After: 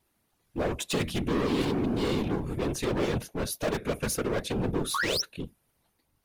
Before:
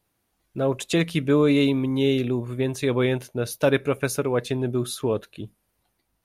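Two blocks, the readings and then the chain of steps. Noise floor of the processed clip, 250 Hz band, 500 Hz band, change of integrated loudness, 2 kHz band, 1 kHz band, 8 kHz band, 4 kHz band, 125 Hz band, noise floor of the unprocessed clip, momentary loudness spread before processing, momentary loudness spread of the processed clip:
-74 dBFS, -6.5 dB, -7.5 dB, -6.0 dB, -3.5 dB, -0.5 dB, 0.0 dB, -1.0 dB, -6.5 dB, -74 dBFS, 10 LU, 6 LU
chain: painted sound rise, 4.94–5.22, 1000–6100 Hz -25 dBFS; overloaded stage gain 26 dB; whisperiser

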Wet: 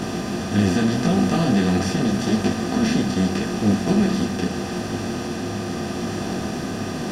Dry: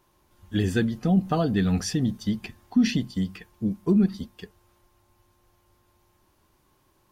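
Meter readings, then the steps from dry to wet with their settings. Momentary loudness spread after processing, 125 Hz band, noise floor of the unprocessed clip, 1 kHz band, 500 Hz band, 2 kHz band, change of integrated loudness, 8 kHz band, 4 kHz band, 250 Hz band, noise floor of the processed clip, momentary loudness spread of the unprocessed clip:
8 LU, +4.5 dB, -66 dBFS, +9.5 dB, +7.5 dB, +9.0 dB, +3.5 dB, +8.5 dB, +8.0 dB, +5.5 dB, -28 dBFS, 9 LU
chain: per-bin compression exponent 0.2; detuned doubles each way 28 cents

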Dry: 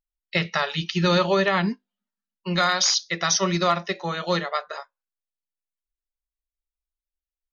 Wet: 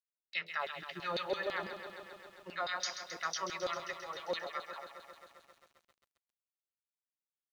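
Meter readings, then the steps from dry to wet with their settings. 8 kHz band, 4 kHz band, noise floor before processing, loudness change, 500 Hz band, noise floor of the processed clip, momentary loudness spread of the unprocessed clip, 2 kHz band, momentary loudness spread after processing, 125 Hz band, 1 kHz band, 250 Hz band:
n/a, -16.5 dB, under -85 dBFS, -16.0 dB, -15.0 dB, under -85 dBFS, 10 LU, -13.0 dB, 14 LU, -28.5 dB, -14.0 dB, -24.0 dB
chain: LFO band-pass saw down 6 Hz 420–4600 Hz; lo-fi delay 0.133 s, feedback 80%, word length 9-bit, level -10 dB; gain -8.5 dB

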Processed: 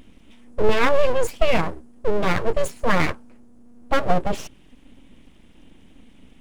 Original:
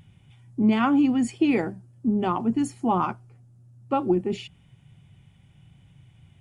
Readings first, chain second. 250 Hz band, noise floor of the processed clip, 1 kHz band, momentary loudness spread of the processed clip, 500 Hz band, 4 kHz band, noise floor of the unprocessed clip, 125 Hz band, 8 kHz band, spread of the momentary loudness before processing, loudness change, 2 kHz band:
-8.0 dB, -50 dBFS, +2.5 dB, 12 LU, +8.0 dB, +8.0 dB, -57 dBFS, +3.0 dB, +6.0 dB, 14 LU, +1.0 dB, +10.0 dB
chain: full-wave rectifier; gain +6.5 dB

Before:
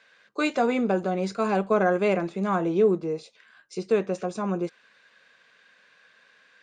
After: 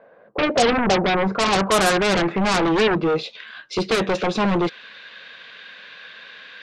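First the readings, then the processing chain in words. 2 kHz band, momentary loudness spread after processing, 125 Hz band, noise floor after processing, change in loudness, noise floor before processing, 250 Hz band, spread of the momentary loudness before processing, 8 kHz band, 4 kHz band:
+10.5 dB, 22 LU, +6.0 dB, -50 dBFS, +5.5 dB, -61 dBFS, +5.0 dB, 12 LU, n/a, +18.0 dB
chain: low-pass sweep 640 Hz -> 3600 Hz, 0.61–3.36; in parallel at -11.5 dB: sine folder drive 20 dB, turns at -7.5 dBFS

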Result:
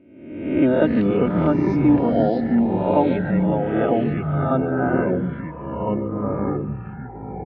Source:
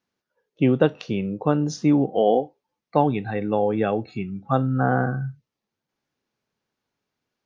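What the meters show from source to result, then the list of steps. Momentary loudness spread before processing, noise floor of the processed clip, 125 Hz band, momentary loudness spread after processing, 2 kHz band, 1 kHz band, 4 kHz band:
9 LU, -36 dBFS, +2.5 dB, 13 LU, +1.5 dB, +0.5 dB, n/a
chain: spectral swells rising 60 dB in 0.95 s; reverb removal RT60 0.71 s; comb 3.2 ms, depth 60%; echoes that change speed 0.186 s, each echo -4 st, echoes 3; Butterworth band-stop 1100 Hz, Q 7; air absorption 470 m; on a send: feedback echo 0.146 s, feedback 53%, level -17 dB

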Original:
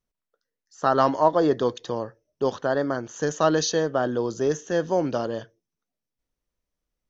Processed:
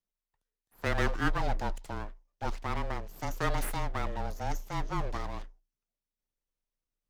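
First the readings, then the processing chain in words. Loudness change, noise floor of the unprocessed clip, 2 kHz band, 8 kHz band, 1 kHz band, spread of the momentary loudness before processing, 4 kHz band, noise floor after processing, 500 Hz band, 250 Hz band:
-10.5 dB, under -85 dBFS, -3.0 dB, n/a, -9.5 dB, 11 LU, -9.0 dB, under -85 dBFS, -16.5 dB, -12.5 dB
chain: full-wave rectifier; frequency shift -28 Hz; gain -7.5 dB

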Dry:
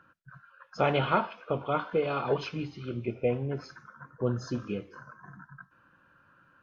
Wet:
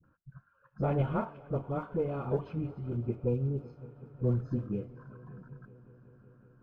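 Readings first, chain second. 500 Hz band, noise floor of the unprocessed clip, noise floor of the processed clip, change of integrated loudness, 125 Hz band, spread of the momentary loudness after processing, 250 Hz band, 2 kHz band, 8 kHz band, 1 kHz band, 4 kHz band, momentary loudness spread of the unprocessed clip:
-4.5 dB, -64 dBFS, -70 dBFS, -2.5 dB, +3.0 dB, 19 LU, -0.5 dB, -14.5 dB, n/a, -9.5 dB, under -20 dB, 22 LU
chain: block floating point 5-bit; spectral repair 3.25–4.1, 580–2300 Hz; tilt -4 dB/oct; dispersion highs, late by 41 ms, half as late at 460 Hz; added harmonics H 4 -27 dB, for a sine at -6 dBFS; high shelf 3000 Hz -12 dB; on a send: multi-head echo 0.187 s, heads second and third, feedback 71%, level -23.5 dB; on the sum: gain -8.5 dB

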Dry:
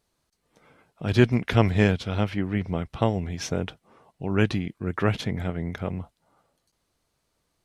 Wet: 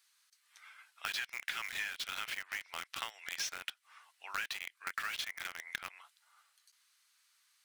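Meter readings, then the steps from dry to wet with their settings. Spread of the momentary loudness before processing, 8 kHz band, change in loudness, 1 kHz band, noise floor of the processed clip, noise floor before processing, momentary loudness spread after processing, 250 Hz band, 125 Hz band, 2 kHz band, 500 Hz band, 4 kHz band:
12 LU, n/a, -13.5 dB, -11.5 dB, -75 dBFS, -76 dBFS, 14 LU, under -40 dB, under -40 dB, -5.0 dB, -32.0 dB, -3.0 dB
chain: HPF 1400 Hz 24 dB/oct; in parallel at -6 dB: companded quantiser 2-bit; on the sum: compressor 12:1, threshold -42 dBFS, peak gain reduction 20.5 dB; gain +6.5 dB

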